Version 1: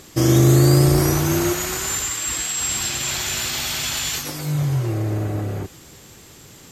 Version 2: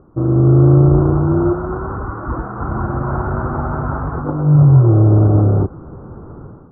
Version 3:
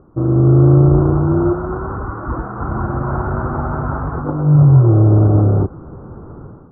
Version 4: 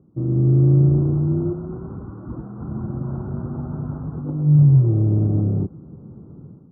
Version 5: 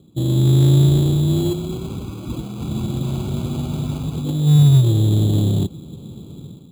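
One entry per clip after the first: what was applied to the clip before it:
Chebyshev low-pass 1400 Hz, order 6; AGC gain up to 15 dB; tilt -1.5 dB/oct; gain -3 dB
nothing audible
band-pass 180 Hz, Q 1.6; gain -1.5 dB
in parallel at -3 dB: hard clip -23.5 dBFS, distortion -4 dB; on the sum: sample-and-hold 12×

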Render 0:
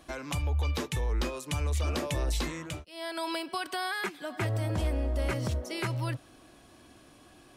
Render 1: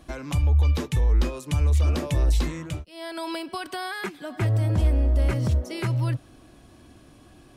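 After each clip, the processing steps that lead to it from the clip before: low shelf 270 Hz +10.5 dB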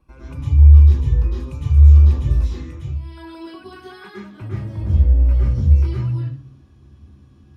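reverb RT60 0.45 s, pre-delay 97 ms, DRR -4.5 dB; gain -18 dB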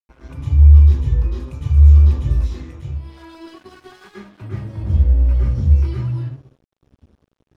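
crossover distortion -43.5 dBFS

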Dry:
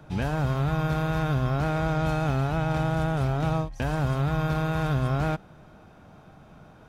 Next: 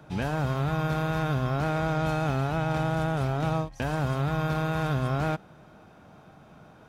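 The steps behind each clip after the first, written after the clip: low shelf 69 Hz -11.5 dB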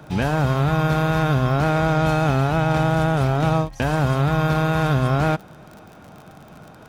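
crackle 42/s -42 dBFS; gain +8 dB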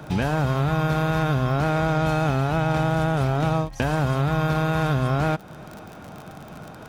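compressor 2:1, threshold -27 dBFS, peak gain reduction 7 dB; gain +3.5 dB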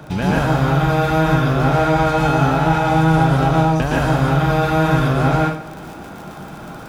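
plate-style reverb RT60 0.63 s, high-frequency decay 0.8×, pre-delay 0.105 s, DRR -4 dB; gain +1.5 dB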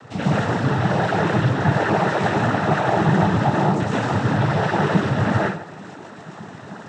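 noise vocoder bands 12; gain -3 dB

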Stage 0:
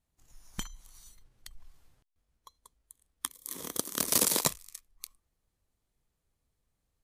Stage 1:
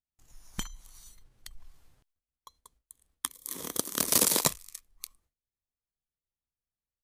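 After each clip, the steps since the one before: gate with hold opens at -60 dBFS; gain +2 dB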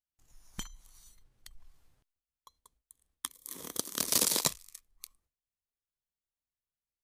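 dynamic EQ 4600 Hz, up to +5 dB, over -40 dBFS, Q 0.82; gain -5.5 dB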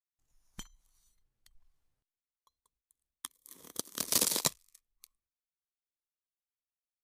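upward expander 1.5:1, over -51 dBFS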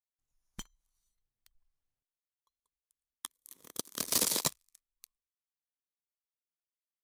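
sample leveller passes 2; gain -6 dB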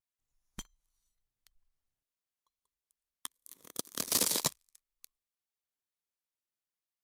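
vibrato 0.6 Hz 27 cents

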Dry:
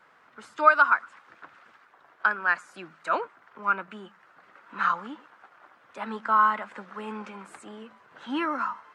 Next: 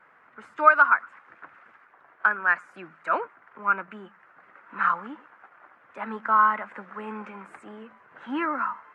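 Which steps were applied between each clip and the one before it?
resonant high shelf 2900 Hz -10 dB, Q 1.5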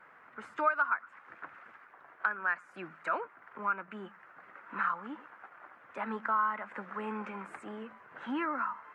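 compressor 2:1, threshold -35 dBFS, peak gain reduction 14 dB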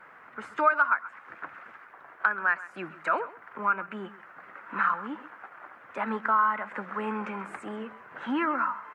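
echo 0.132 s -17.5 dB; gain +6 dB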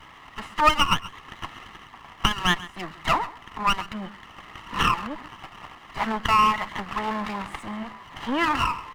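minimum comb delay 0.99 ms; gain +6 dB

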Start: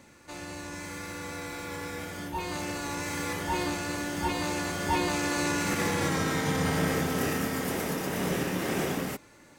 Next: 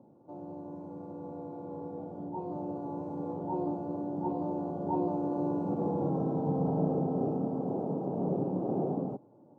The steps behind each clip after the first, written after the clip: elliptic band-pass 120–800 Hz, stop band 40 dB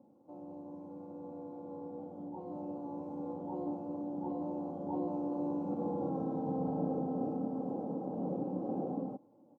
comb 3.8 ms, depth 52%; gain -6 dB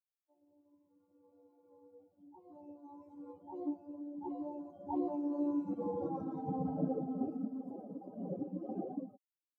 per-bin expansion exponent 3; gain +5.5 dB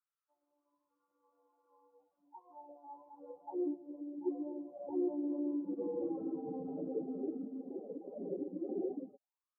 limiter -31.5 dBFS, peak gain reduction 8 dB; auto-wah 380–1300 Hz, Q 6, down, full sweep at -42 dBFS; gain +11.5 dB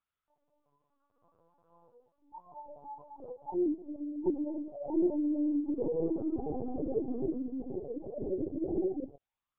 LPC vocoder at 8 kHz pitch kept; gain +6 dB

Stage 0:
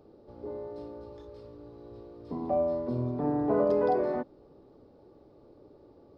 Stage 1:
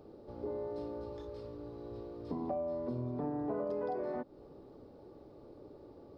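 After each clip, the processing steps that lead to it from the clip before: compressor 5:1, threshold -37 dBFS, peak gain reduction 14 dB; gain +2 dB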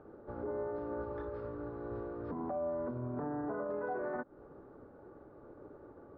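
limiter -36.5 dBFS, peak gain reduction 11.5 dB; synth low-pass 1500 Hz, resonance Q 4.2; upward expander 1.5:1, over -58 dBFS; gain +5.5 dB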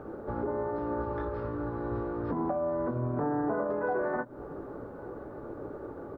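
in parallel at +2 dB: compressor, threshold -46 dBFS, peak gain reduction 12 dB; on the sum: doubler 18 ms -9 dB; echo 1.164 s -23 dB; gain +5 dB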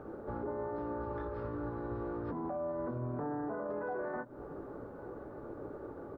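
limiter -26.5 dBFS, peak gain reduction 6 dB; gain -4 dB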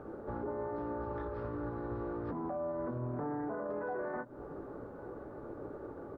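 Doppler distortion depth 0.14 ms

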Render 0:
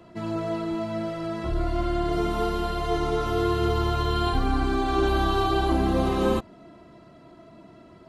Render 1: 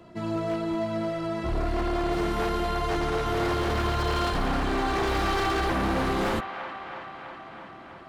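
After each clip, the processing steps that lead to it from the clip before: wavefolder -21 dBFS; band-limited delay 0.325 s, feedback 72%, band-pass 1400 Hz, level -7 dB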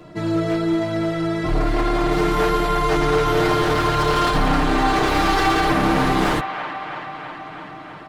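comb 6.6 ms, depth 76%; gain +6.5 dB

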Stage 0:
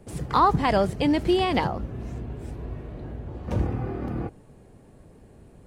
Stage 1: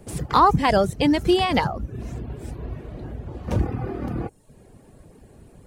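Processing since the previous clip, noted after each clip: reverb removal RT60 0.61 s; high shelf 5000 Hz +5.5 dB; gain +3.5 dB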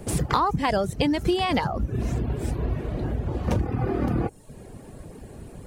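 compressor 8:1, threshold -27 dBFS, peak gain reduction 15.5 dB; gain +7 dB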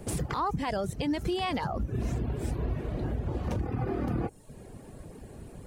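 limiter -18 dBFS, peak gain reduction 11.5 dB; gain -4 dB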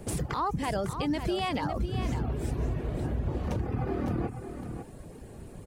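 echo 0.552 s -9 dB

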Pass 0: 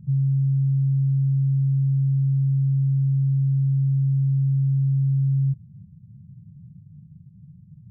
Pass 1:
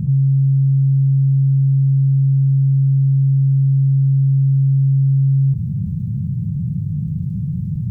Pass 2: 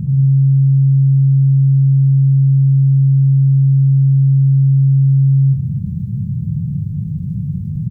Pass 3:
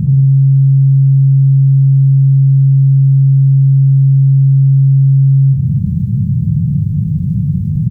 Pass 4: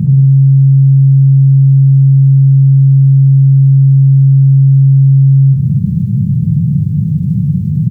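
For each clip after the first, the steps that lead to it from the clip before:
fast leveller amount 70%; gain +6.5 dB
tapped delay 96/193 ms -7/-11 dB
compressor, threshold -13 dBFS, peak gain reduction 4.5 dB; gain +7 dB
HPF 110 Hz; gain +3.5 dB

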